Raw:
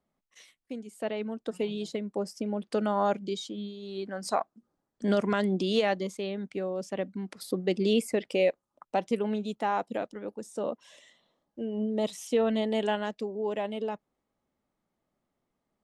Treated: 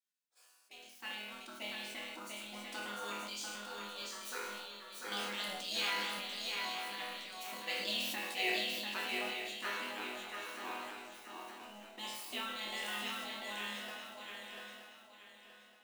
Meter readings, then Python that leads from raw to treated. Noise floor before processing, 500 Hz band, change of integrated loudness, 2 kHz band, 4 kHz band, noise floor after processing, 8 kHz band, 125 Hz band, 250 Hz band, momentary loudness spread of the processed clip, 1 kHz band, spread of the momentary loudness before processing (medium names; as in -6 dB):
-83 dBFS, -19.0 dB, -9.0 dB, +1.5 dB, +2.5 dB, -64 dBFS, -0.5 dB, under -20 dB, -19.5 dB, 14 LU, -9.0 dB, 12 LU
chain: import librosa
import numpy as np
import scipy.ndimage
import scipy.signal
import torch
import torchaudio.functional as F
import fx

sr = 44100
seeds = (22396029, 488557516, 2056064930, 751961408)

p1 = scipy.ndimage.median_filter(x, 3, mode='constant')
p2 = scipy.signal.sosfilt(scipy.signal.butter(4, 380.0, 'highpass', fs=sr, output='sos'), p1)
p3 = fx.high_shelf(p2, sr, hz=2900.0, db=7.0)
p4 = fx.spec_gate(p3, sr, threshold_db=-15, keep='weak')
p5 = fx.quant_dither(p4, sr, seeds[0], bits=8, dither='none')
p6 = p4 + (p5 * 10.0 ** (-8.0 / 20.0))
p7 = fx.resonator_bank(p6, sr, root=40, chord='major', decay_s=0.76)
p8 = fx.quant_float(p7, sr, bits=2)
p9 = p8 + fx.echo_swing(p8, sr, ms=924, ratio=3, feedback_pct=32, wet_db=-4, dry=0)
p10 = fx.sustainer(p9, sr, db_per_s=26.0)
y = p10 * 10.0 ** (13.0 / 20.0)